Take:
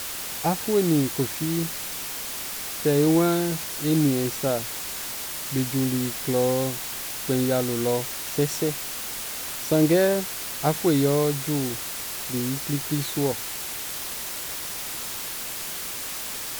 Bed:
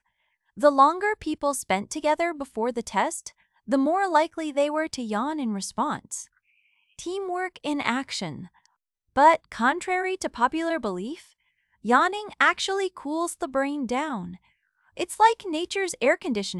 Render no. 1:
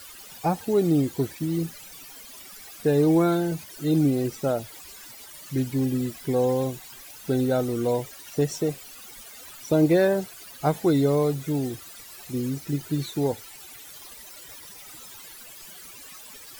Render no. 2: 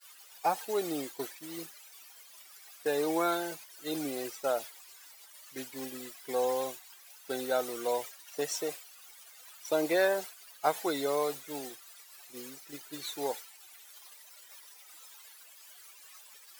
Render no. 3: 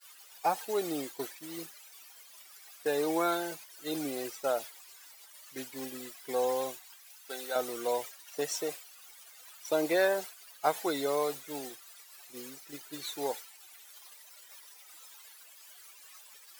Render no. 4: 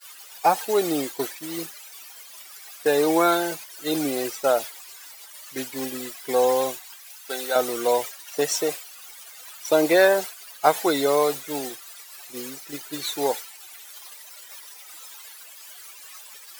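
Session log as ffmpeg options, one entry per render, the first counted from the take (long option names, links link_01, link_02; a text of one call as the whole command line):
ffmpeg -i in.wav -af "afftdn=noise_reduction=16:noise_floor=-33" out.wav
ffmpeg -i in.wav -af "highpass=690,agate=range=-33dB:threshold=-36dB:ratio=3:detection=peak" out.wav
ffmpeg -i in.wav -filter_complex "[0:a]asettb=1/sr,asplit=3[link_01][link_02][link_03];[link_01]atrim=end=6.964[link_04];[link_02]atrim=start=6.96:end=7.56,asetpts=PTS-STARTPTS,afade=type=in:duration=0.004:curve=qsin,afade=type=out:start_time=0.596:duration=0.004:curve=qsin,highpass=frequency=1000:poles=1[link_05];[link_03]atrim=start=7.556[link_06];[link_04][link_05]acrossfade=duration=0.004:curve1=hsin:curve2=qsin[link_07];[link_07][link_06]acrossfade=duration=0.004:curve1=qsin:curve2=hsin" out.wav
ffmpeg -i in.wav -af "volume=10dB" out.wav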